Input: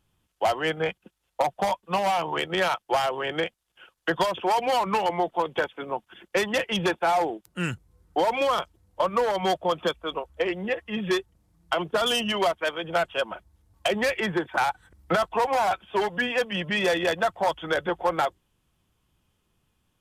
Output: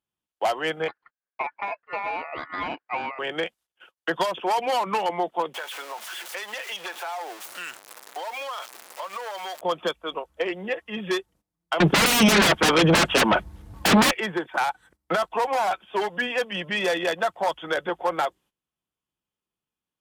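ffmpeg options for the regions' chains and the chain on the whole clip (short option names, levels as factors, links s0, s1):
-filter_complex "[0:a]asettb=1/sr,asplit=3[s0][s1][s2];[s0]atrim=end=0.884[s3];[s1]atrim=start=0.88:end=3.19,asetpts=PTS-STARTPTS,afade=t=in:d=0.004:c=qsin,afade=t=out:st=2.306:d=0.004:c=qsin,aeval=exprs='val(0)*sin(2*PI*1600*n/s)':c=same,lowpass=1700[s4];[s2]atrim=start=3.186[s5];[s3][s4]acrossfade=d=0.004:c1=hsin:c2=qsin[s6];[s6][s5]acrossfade=d=0.004:c1=qsin:c2=hsin,asettb=1/sr,asplit=3[s7][s8][s9];[s7]atrim=end=5.544[s10];[s8]atrim=start=5.54:end=9.61,asetpts=PTS-STARTPTS,afade=t=in:d=0.004:c=qsin,afade=t=out:st=4.066:d=0.004:c=qsin,aeval=exprs='val(0)+0.5*0.0299*sgn(val(0))':c=same,highpass=760,acompressor=threshold=0.0316:ratio=4:attack=3.2:release=140:knee=1:detection=peak[s11];[s9]atrim=start=9.606[s12];[s10][s11]acrossfade=d=0.004:c1=hsin:c2=qsin[s13];[s13][s12]acrossfade=d=0.004:c1=qsin:c2=hsin,asettb=1/sr,asplit=3[s14][s15][s16];[s14]atrim=end=11.804[s17];[s15]atrim=start=11.8:end=14.11,asetpts=PTS-STARTPTS,afade=t=in:d=0.004:c=qsin,afade=t=out:st=2.306:d=0.004:c=qsin,aeval=exprs='0.224*sin(PI/2*7.08*val(0)/0.224)':c=same,bass=f=250:g=9,treble=f=4000:g=-8[s18];[s16]atrim=start=14.106[s19];[s17][s18]acrossfade=d=0.004:c1=hsin:c2=qsin[s20];[s20][s19]acrossfade=d=0.004:c1=qsin:c2=hsin,highpass=54,agate=range=0.158:threshold=0.00251:ratio=16:detection=peak,equalizer=f=83:t=o:w=1.7:g=-12.5"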